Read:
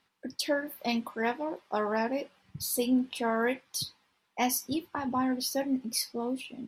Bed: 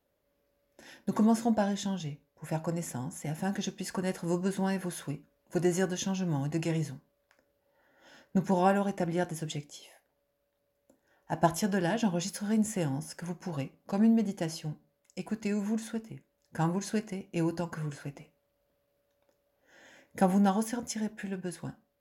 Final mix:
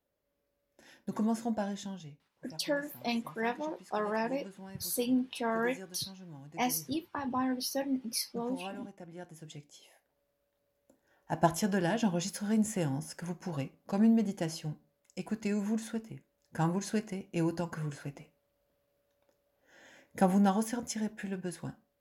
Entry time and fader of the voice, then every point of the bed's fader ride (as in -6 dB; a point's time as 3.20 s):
2.20 s, -3.0 dB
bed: 1.75 s -6 dB
2.55 s -17.5 dB
9.08 s -17.5 dB
10.21 s -1 dB